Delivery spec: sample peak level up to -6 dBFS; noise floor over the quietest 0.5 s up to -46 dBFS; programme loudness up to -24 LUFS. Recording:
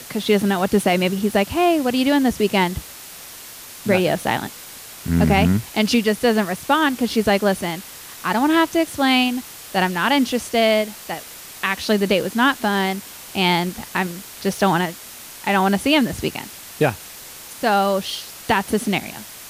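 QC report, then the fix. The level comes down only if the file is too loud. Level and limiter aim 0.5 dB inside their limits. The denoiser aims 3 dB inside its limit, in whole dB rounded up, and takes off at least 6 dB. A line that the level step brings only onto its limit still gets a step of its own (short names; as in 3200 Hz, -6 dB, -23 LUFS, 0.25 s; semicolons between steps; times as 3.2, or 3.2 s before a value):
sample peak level -5.5 dBFS: fail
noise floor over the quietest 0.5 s -38 dBFS: fail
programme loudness -19.5 LUFS: fail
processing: denoiser 6 dB, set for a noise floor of -38 dBFS; gain -5 dB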